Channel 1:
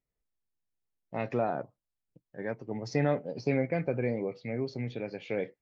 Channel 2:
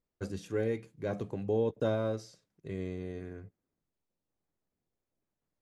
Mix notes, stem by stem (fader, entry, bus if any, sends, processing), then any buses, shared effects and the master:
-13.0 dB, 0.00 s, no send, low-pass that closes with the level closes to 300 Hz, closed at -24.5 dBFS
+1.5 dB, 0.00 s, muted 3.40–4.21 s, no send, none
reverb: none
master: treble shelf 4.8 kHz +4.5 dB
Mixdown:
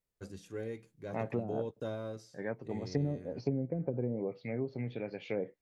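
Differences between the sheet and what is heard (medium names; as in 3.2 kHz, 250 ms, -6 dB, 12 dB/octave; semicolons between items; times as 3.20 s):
stem 1 -13.0 dB -> -2.5 dB; stem 2 +1.5 dB -> -8.5 dB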